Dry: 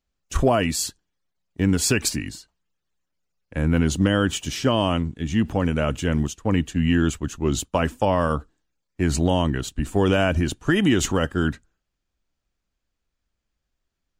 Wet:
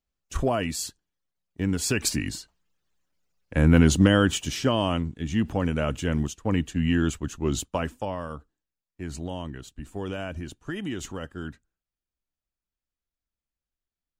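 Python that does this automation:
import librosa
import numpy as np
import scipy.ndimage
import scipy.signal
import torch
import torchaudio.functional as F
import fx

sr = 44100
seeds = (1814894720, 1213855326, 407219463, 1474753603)

y = fx.gain(x, sr, db=fx.line((1.86, -6.0), (2.34, 3.0), (3.86, 3.0), (4.78, -3.5), (7.62, -3.5), (8.26, -13.5)))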